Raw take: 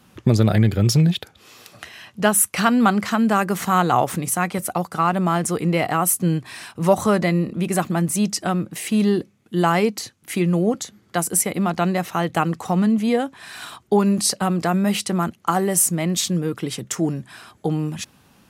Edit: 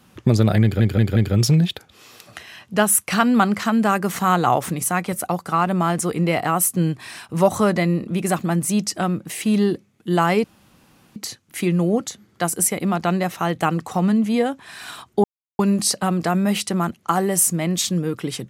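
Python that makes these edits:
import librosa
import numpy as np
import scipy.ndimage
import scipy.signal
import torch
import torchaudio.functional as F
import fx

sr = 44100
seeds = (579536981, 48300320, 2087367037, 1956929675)

y = fx.edit(x, sr, fx.stutter(start_s=0.62, slice_s=0.18, count=4),
    fx.insert_room_tone(at_s=9.9, length_s=0.72),
    fx.insert_silence(at_s=13.98, length_s=0.35), tone=tone)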